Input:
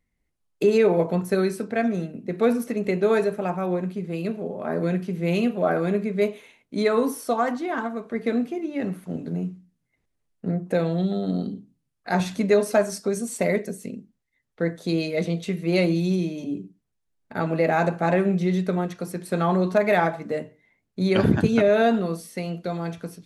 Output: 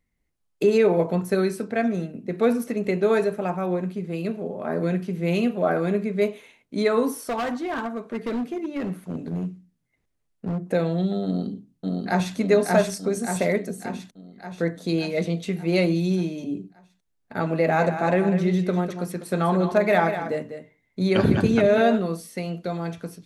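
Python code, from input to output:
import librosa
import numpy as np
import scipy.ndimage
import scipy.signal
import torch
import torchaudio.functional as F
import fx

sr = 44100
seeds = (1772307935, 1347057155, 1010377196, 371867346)

y = fx.clip_hard(x, sr, threshold_db=-23.5, at=(7.18, 10.61))
y = fx.echo_throw(y, sr, start_s=11.25, length_s=1.11, ms=580, feedback_pct=60, wet_db=-1.5)
y = fx.echo_single(y, sr, ms=198, db=-9.5, at=(17.66, 21.96), fade=0.02)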